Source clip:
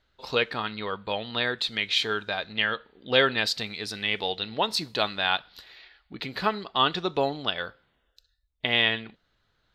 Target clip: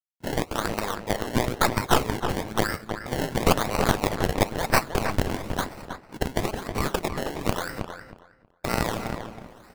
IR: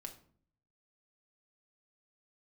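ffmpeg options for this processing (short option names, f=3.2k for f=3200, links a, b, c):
-filter_complex "[0:a]agate=range=-26dB:threshold=-46dB:ratio=16:detection=peak,areverse,acompressor=mode=upward:threshold=-30dB:ratio=2.5,areverse,alimiter=limit=-16dB:level=0:latency=1:release=125,acompressor=threshold=-30dB:ratio=4,crystalizer=i=7.5:c=0,acrusher=samples=25:mix=1:aa=0.000001:lfo=1:lforange=25:lforate=1,aeval=exprs='0.473*(cos(1*acos(clip(val(0)/0.473,-1,1)))-cos(1*PI/2))+0.133*(cos(4*acos(clip(val(0)/0.473,-1,1)))-cos(4*PI/2))':c=same,acrusher=bits=9:mix=0:aa=0.000001,asplit=2[a][b];[b]adelay=318,lowpass=f=2.7k:p=1,volume=-7dB,asplit=2[c][d];[d]adelay=318,lowpass=f=2.7k:p=1,volume=0.2,asplit=2[e][f];[f]adelay=318,lowpass=f=2.7k:p=1,volume=0.2[g];[a][c][e][g]amix=inputs=4:normalize=0,volume=-1.5dB"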